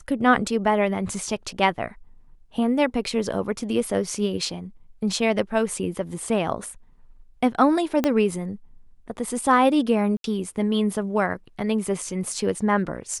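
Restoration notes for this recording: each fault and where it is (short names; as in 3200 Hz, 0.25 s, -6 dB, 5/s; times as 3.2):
8.04 pop -8 dBFS
10.17–10.24 gap 72 ms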